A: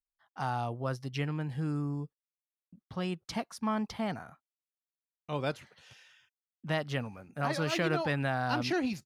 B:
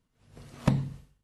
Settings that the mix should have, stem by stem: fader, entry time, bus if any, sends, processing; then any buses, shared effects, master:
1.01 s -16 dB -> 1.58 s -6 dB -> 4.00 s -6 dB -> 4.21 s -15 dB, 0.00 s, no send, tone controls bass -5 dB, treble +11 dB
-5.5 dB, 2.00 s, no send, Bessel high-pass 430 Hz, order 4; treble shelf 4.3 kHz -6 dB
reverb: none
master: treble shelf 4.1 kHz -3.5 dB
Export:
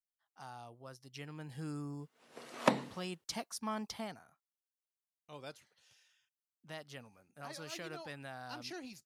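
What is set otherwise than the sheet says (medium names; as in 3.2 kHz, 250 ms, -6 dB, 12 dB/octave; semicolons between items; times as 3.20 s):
stem B -5.5 dB -> +6.0 dB; master: missing treble shelf 4.1 kHz -3.5 dB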